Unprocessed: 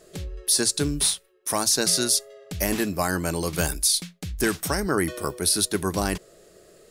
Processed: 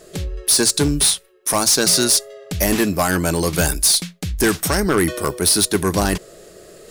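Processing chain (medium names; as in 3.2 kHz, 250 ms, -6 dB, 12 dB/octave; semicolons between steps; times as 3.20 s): hard clipper -18 dBFS, distortion -13 dB; reverse; upward compressor, threshold -45 dBFS; reverse; trim +8 dB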